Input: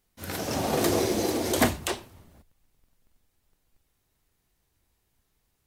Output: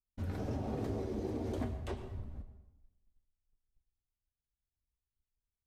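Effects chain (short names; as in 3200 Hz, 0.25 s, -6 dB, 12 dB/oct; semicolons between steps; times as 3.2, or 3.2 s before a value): notch comb 170 Hz; expander -54 dBFS; tilt -4 dB/oct; compressor 6:1, threshold -35 dBFS, peak gain reduction 22.5 dB; high shelf 10000 Hz -5 dB; on a send: reverb RT60 0.95 s, pre-delay 95 ms, DRR 10 dB; on the sum: gain -1 dB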